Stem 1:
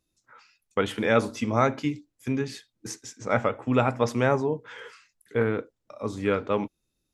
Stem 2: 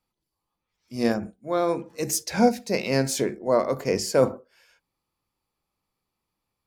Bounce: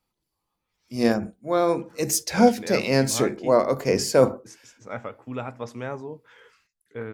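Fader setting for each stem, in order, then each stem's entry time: -10.0, +2.5 dB; 1.60, 0.00 s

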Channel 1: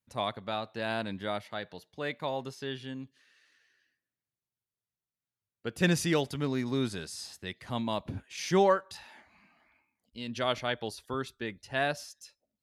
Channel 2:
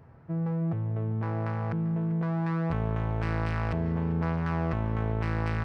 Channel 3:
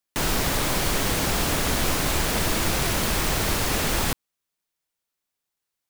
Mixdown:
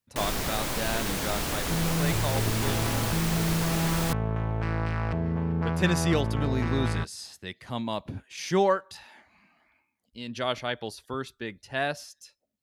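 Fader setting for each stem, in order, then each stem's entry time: +1.0, +0.5, -6.5 dB; 0.00, 1.40, 0.00 s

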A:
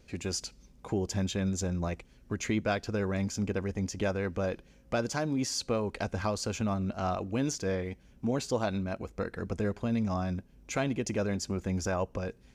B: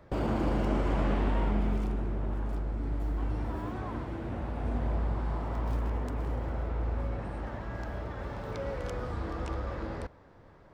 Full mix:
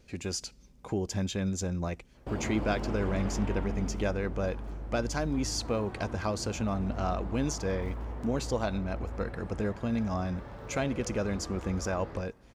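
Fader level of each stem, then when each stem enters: -0.5, -6.0 dB; 0.00, 2.15 s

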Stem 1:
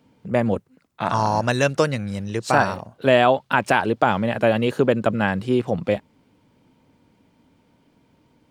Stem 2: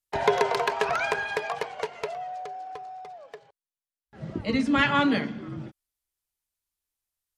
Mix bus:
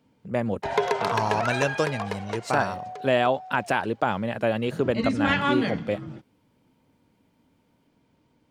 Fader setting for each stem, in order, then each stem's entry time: -6.0, -1.5 dB; 0.00, 0.50 s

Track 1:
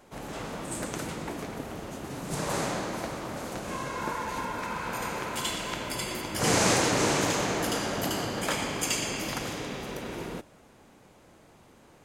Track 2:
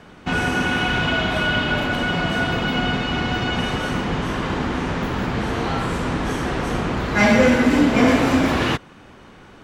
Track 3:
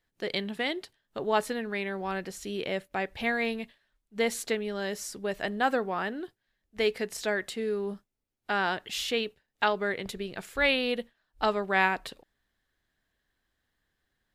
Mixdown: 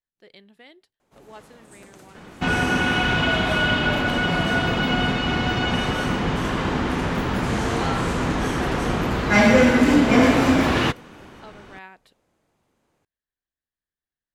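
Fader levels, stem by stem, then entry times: -14.0, 0.0, -18.0 dB; 1.00, 2.15, 0.00 s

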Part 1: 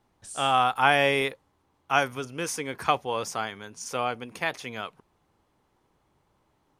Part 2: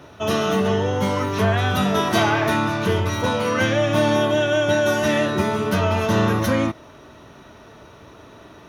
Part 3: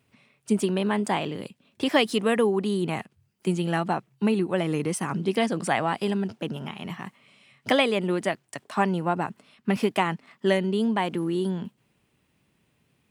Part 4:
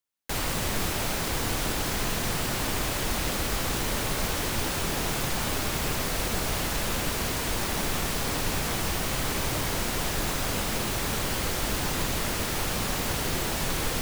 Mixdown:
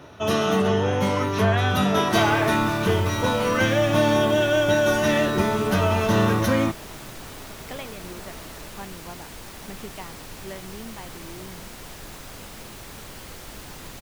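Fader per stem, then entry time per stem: -16.5, -1.0, -16.0, -11.5 dB; 0.00, 0.00, 0.00, 1.85 s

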